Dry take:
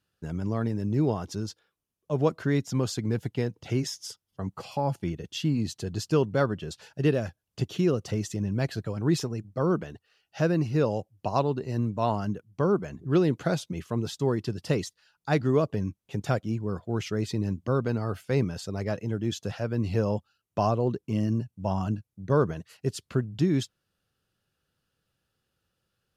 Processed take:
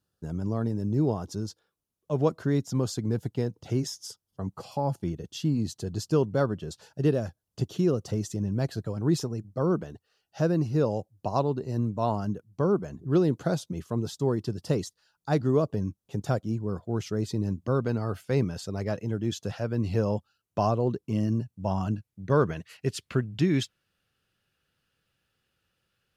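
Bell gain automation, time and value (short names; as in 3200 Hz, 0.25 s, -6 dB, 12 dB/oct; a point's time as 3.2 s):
bell 2300 Hz 1.2 oct
1.44 s -11 dB
2.13 s -1.5 dB
2.42 s -9 dB
17.36 s -9 dB
17.81 s -2.5 dB
21.66 s -2.5 dB
22.49 s +7 dB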